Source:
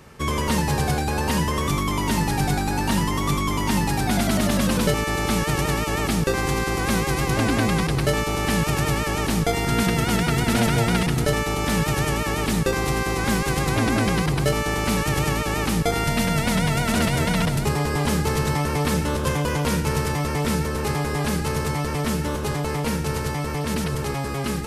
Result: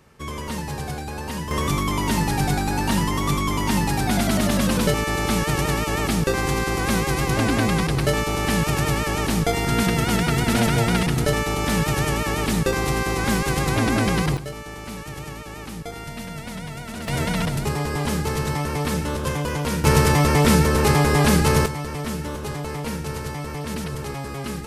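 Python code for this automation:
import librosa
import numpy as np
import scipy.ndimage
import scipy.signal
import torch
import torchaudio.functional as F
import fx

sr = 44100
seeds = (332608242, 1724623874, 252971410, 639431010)

y = fx.gain(x, sr, db=fx.steps((0.0, -7.5), (1.51, 0.5), (14.37, -12.0), (17.08, -2.0), (19.84, 7.0), (21.66, -4.0)))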